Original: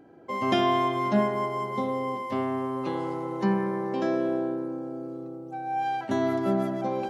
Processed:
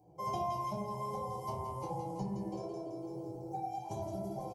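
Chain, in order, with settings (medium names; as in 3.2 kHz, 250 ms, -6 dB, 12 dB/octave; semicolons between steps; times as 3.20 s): high-pass 83 Hz 24 dB/octave; level rider gain up to 15 dB; fifteen-band graphic EQ 630 Hz -11 dB, 1.6 kHz -7 dB, 4 kHz -8 dB; reverb removal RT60 0.97 s; static phaser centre 620 Hz, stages 4; on a send: two-band feedback delay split 1 kHz, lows 115 ms, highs 260 ms, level -3 dB; on the sum: flange 1.6 Hz, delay 8.5 ms, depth 8.8 ms, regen -58%; time stretch by phase-locked vocoder 0.64×; high-order bell 2.3 kHz -11.5 dB; compression 12:1, threshold -40 dBFS, peak gain reduction 19.5 dB; comb 1.3 ms, depth 64%; simulated room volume 48 m³, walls mixed, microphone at 0.9 m; trim +1 dB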